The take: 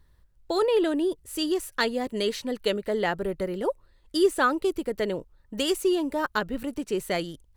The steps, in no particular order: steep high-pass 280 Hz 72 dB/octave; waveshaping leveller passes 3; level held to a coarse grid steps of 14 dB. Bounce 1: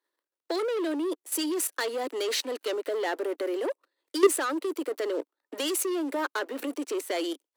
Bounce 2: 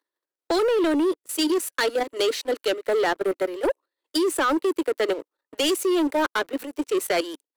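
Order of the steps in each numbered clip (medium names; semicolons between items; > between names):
waveshaping leveller > level held to a coarse grid > steep high-pass; level held to a coarse grid > steep high-pass > waveshaping leveller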